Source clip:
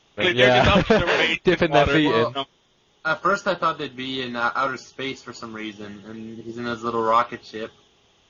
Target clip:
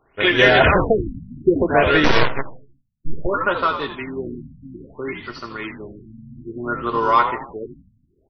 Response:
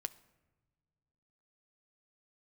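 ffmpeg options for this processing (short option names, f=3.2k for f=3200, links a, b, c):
-filter_complex "[0:a]equalizer=f=1.7k:w=1.7:g=4.5,aecho=1:1:2.8:0.33,asplit=6[a][b][c][d][e][f];[b]adelay=81,afreqshift=-86,volume=-8.5dB[g];[c]adelay=162,afreqshift=-172,volume=-15.8dB[h];[d]adelay=243,afreqshift=-258,volume=-23.2dB[i];[e]adelay=324,afreqshift=-344,volume=-30.5dB[j];[f]adelay=405,afreqshift=-430,volume=-37.8dB[k];[a][g][h][i][j][k]amix=inputs=6:normalize=0,asettb=1/sr,asplit=3[l][m][n];[l]atrim=end=2.044[o];[m]atrim=start=2.04:end=3.27,asetpts=PTS-STARTPTS,afade=t=in:d=0.004:c=qsin,afade=t=out:st=1.226:d=0.004:c=qsin,aeval=exprs='0.531*(cos(1*acos(clip(val(0)/0.531,-1,1)))-cos(1*PI/2))+0.075*(cos(3*acos(clip(val(0)/0.531,-1,1)))-cos(3*PI/2))+0.0266*(cos(5*acos(clip(val(0)/0.531,-1,1)))-cos(5*PI/2))+0.133*(cos(6*acos(clip(val(0)/0.531,-1,1)))-cos(6*PI/2))+0.0841*(cos(7*acos(clip(val(0)/0.531,-1,1)))-cos(7*PI/2))':c=same[p];[n]atrim=start=3.266[q];[o][p]acrossfade=d=0.004:c1=hsin:c2=qsin[r];[r][q]acrossfade=d=0.004:c1=qsin:c2=hsin,asplit=2[s][t];[1:a]atrim=start_sample=2205,afade=t=out:st=0.44:d=0.01,atrim=end_sample=19845[u];[t][u]afir=irnorm=-1:irlink=0,volume=8dB[v];[s][v]amix=inputs=2:normalize=0,afftfilt=real='re*lt(b*sr/1024,250*pow(6200/250,0.5+0.5*sin(2*PI*0.6*pts/sr)))':imag='im*lt(b*sr/1024,250*pow(6200/250,0.5+0.5*sin(2*PI*0.6*pts/sr)))':win_size=1024:overlap=0.75,volume=-8.5dB"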